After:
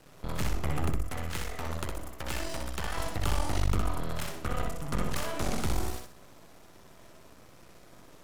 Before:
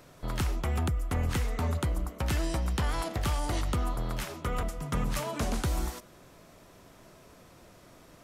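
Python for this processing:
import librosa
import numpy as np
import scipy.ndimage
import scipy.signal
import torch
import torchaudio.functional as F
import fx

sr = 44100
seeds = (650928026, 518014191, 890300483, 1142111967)

y = fx.low_shelf(x, sr, hz=340.0, db=-9.0, at=(1.02, 2.97))
y = np.maximum(y, 0.0)
y = fx.echo_feedback(y, sr, ms=62, feedback_pct=31, wet_db=-4)
y = F.gain(torch.from_numpy(y), 2.0).numpy()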